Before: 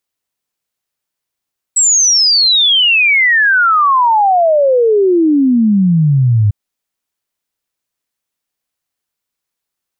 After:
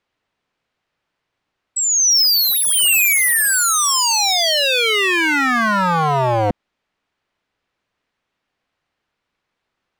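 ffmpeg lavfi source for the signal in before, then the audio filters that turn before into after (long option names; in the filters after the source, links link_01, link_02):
-f lavfi -i "aevalsrc='0.447*clip(min(t,4.75-t)/0.01,0,1)*sin(2*PI*7900*4.75/log(100/7900)*(exp(log(100/7900)*t/4.75)-1))':duration=4.75:sample_rate=44100"
-filter_complex "[0:a]lowpass=2700,asplit=2[link_01][link_02];[link_02]acontrast=85,volume=1dB[link_03];[link_01][link_03]amix=inputs=2:normalize=0,aeval=exprs='0.299*(abs(mod(val(0)/0.299+3,4)-2)-1)':channel_layout=same"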